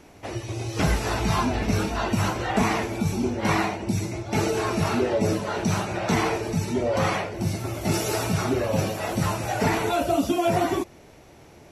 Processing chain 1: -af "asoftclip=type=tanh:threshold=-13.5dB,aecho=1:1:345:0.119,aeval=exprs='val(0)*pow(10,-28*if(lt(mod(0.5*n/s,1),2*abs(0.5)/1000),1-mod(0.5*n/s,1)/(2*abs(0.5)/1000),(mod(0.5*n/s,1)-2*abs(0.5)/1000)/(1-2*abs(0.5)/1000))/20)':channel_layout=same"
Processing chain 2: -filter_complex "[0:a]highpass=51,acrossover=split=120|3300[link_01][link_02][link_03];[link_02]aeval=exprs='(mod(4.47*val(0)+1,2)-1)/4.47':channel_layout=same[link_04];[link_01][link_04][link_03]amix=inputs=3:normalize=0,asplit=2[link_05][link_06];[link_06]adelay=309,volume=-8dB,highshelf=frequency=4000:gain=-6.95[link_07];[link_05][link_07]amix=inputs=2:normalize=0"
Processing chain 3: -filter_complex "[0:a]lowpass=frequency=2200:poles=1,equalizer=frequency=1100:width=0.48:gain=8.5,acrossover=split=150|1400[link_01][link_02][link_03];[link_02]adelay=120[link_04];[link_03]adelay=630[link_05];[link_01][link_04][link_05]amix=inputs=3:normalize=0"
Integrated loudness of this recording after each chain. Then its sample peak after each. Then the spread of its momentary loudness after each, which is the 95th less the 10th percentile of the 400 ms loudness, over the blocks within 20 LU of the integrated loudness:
−32.5, −24.5, −22.5 LKFS; −16.0, −10.5, −6.5 dBFS; 20, 5, 7 LU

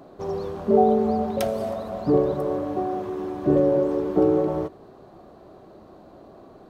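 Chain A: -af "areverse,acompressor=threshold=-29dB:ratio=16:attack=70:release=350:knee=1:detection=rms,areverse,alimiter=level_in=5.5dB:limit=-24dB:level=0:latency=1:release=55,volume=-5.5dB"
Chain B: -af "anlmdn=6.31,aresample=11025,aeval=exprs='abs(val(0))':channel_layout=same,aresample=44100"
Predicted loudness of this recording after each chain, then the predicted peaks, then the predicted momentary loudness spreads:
−39.0, −28.0 LKFS; −29.5, −5.5 dBFS; 11, 11 LU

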